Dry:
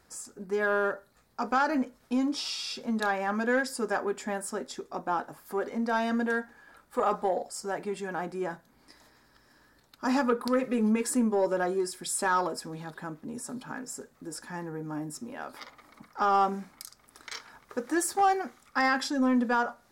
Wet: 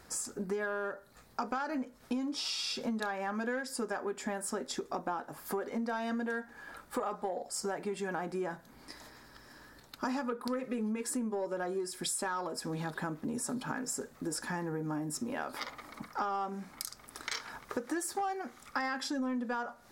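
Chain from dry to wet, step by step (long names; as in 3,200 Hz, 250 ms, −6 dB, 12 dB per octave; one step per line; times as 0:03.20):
downward compressor 10 to 1, threshold −39 dBFS, peak gain reduction 18.5 dB
level +6.5 dB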